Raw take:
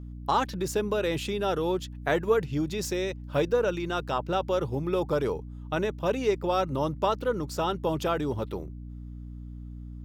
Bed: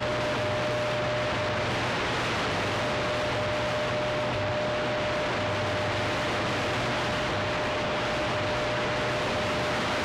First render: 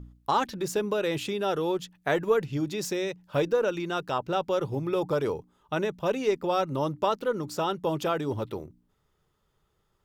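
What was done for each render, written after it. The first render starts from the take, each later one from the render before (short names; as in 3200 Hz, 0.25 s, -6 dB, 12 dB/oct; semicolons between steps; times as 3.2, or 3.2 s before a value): de-hum 60 Hz, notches 5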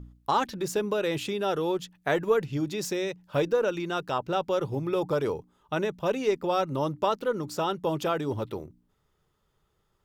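nothing audible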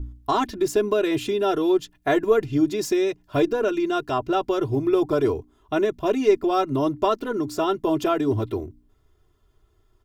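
low shelf 350 Hz +9.5 dB; comb 2.9 ms, depth 89%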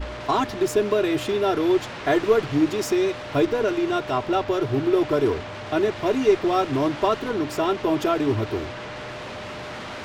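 add bed -7 dB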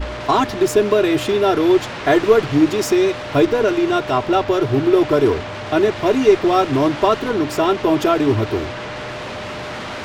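gain +6 dB; limiter -2 dBFS, peak gain reduction 1 dB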